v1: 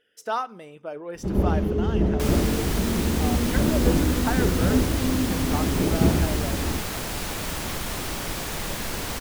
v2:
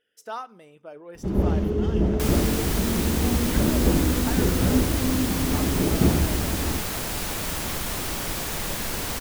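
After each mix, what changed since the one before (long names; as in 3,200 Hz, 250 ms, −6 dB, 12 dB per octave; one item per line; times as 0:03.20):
speech −7.0 dB
master: add high-shelf EQ 8,500 Hz +5 dB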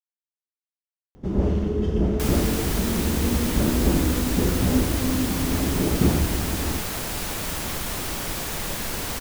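speech: muted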